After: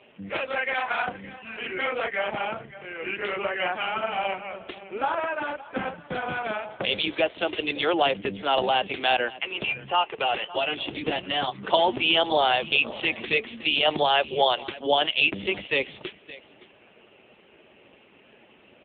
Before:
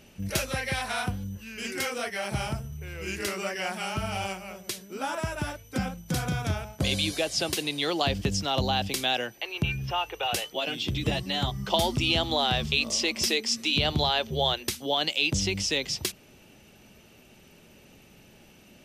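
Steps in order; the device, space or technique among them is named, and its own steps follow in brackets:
0:13.37–0:13.87: high-pass filter 160 Hz 24 dB per octave
satellite phone (band-pass filter 350–3,200 Hz; single-tap delay 565 ms −17.5 dB; level +8 dB; AMR narrowband 5.9 kbit/s 8,000 Hz)

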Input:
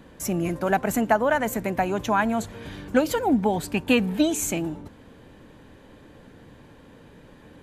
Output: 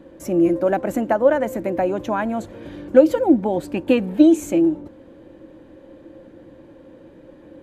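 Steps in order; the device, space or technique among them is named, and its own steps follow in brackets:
inside a helmet (high-shelf EQ 3,900 Hz −6.5 dB; hollow resonant body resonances 330/530 Hz, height 17 dB, ringing for 65 ms)
level −3 dB

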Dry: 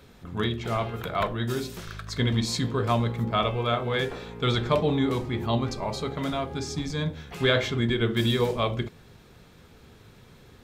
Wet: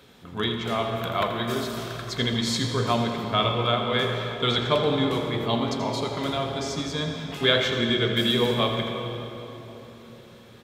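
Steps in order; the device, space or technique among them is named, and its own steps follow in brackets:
PA in a hall (high-pass filter 190 Hz 6 dB per octave; parametric band 3,300 Hz +5 dB 0.39 octaves; single-tap delay 82 ms −11 dB; convolution reverb RT60 3.7 s, pre-delay 87 ms, DRR 5 dB)
level +1 dB

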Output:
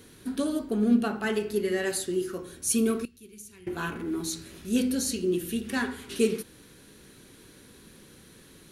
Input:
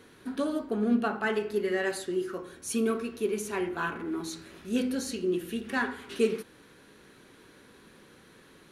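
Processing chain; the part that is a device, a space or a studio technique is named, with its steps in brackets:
smiley-face EQ (low-shelf EQ 140 Hz +6.5 dB; parametric band 1,100 Hz −6.5 dB 2.5 octaves; high-shelf EQ 5,100 Hz +8.5 dB)
0:03.05–0:03.67: guitar amp tone stack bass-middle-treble 6-0-2
level +3 dB

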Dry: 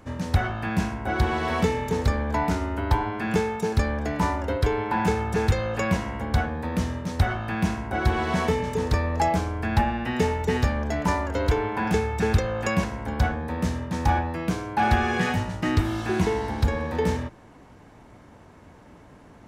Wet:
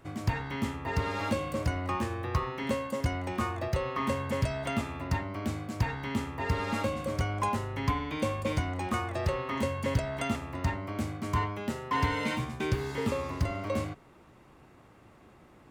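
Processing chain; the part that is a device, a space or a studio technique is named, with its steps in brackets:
nightcore (speed change +24%)
level −7 dB

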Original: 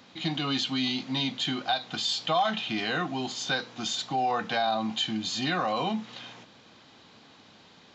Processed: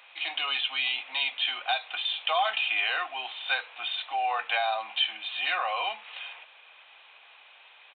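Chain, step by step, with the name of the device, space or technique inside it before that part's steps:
musical greeting card (downsampling to 8,000 Hz; high-pass filter 650 Hz 24 dB per octave; parametric band 2,500 Hz +11 dB 0.43 octaves)

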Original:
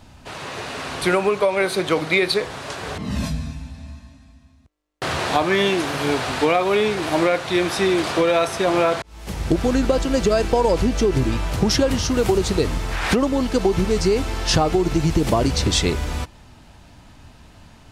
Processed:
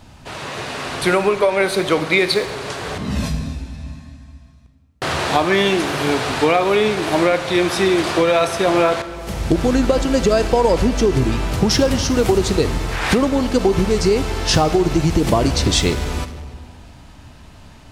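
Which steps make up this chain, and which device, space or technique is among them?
saturated reverb return (on a send at −6 dB: convolution reverb RT60 1.4 s, pre-delay 40 ms + soft clipping −23.5 dBFS, distortion −7 dB)
on the sum: level +2.5 dB

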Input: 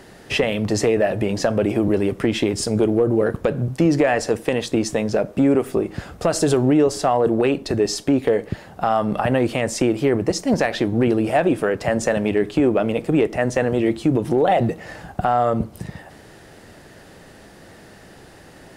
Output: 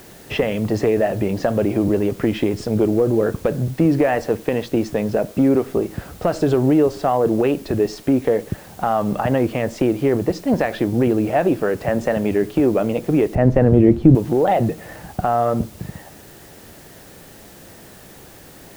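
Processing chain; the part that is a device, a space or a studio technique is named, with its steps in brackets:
cassette deck with a dirty head (head-to-tape spacing loss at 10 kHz 22 dB; tape wow and flutter; white noise bed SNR 27 dB)
0:13.35–0:14.15: spectral tilt −3.5 dB per octave
level +1.5 dB

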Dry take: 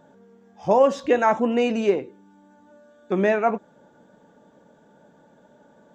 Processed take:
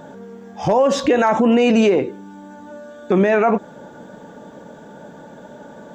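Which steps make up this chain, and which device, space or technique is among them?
loud club master (downward compressor 2.5 to 1, threshold −21 dBFS, peak gain reduction 6.5 dB; hard clipping −13.5 dBFS, distortion −33 dB; boost into a limiter +22 dB)
level −6.5 dB

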